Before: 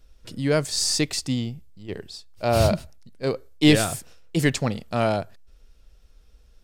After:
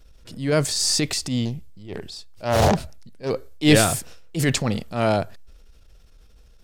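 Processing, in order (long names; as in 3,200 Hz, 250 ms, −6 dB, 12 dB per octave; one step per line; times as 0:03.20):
transient designer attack −9 dB, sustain +4 dB
0:01.45–0:03.30: highs frequency-modulated by the lows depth 0.83 ms
level +3 dB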